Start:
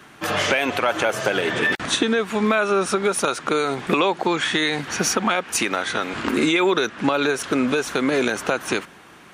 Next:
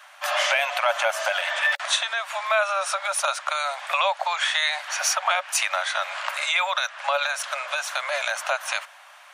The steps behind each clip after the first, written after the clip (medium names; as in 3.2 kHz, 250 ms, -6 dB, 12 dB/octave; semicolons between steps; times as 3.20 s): Chebyshev high-pass 570 Hz, order 8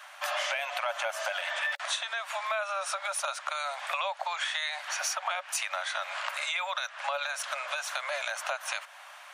compression 2.5:1, threshold -33 dBFS, peak gain reduction 11 dB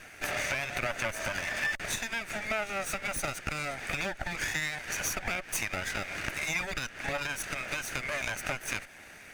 comb filter that takes the minimum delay 0.47 ms; peaking EQ 4.1 kHz -11.5 dB 0.24 oct; trim +1.5 dB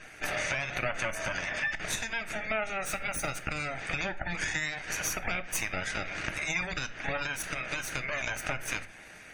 spectral gate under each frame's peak -25 dB strong; simulated room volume 360 m³, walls furnished, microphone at 0.58 m